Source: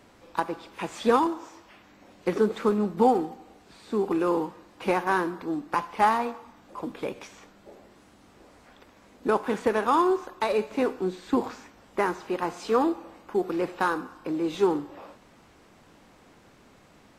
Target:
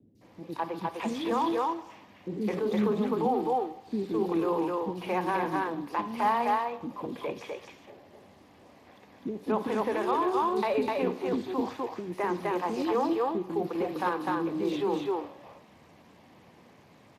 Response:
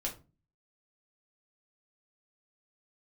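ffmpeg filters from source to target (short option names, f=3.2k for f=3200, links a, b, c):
-filter_complex "[0:a]equalizer=f=1.4k:t=o:w=0.33:g=-10,asplit=2[a][b];[b]aecho=0:1:252:0.668[c];[a][c]amix=inputs=2:normalize=0,alimiter=limit=-18dB:level=0:latency=1:release=25,adynamicequalizer=threshold=0.00126:dfrequency=3200:dqfactor=4.7:tfrequency=3200:tqfactor=4.7:attack=5:release=100:ratio=0.375:range=1.5:mode=boostabove:tftype=bell,asettb=1/sr,asplit=3[d][e][f];[d]atrim=end=1.034[g];[e]atrim=start=1.03:end=2.43,asetpts=PTS-STARTPTS,afade=t=in:d=0.004:c=qsin,afade=t=out:st=1.396:d=0.004:c=qsin,bandreject=f=60:t=h:w=6,bandreject=f=120:t=h:w=6,bandreject=f=180:t=h:w=6,bandreject=f=240:t=h:w=6,bandreject=f=300:t=h:w=6,bandreject=f=360:t=h:w=6,bandreject=f=420:t=h:w=6,bandreject=f=480:t=h:w=6,bandreject=f=540:t=h:w=6[h];[f]atrim=start=2.426[i];[g][h]acrossfade=d=0.004:c1=hsin:c2=qsin[j];[j][i]acrossfade=d=0.004:c1=qsin:c2=hsin,acrossover=split=350|4000[k][l][m];[m]adelay=150[n];[l]adelay=210[o];[k][o][n]amix=inputs=3:normalize=0" -ar 32000 -c:a libspeex -b:a 28k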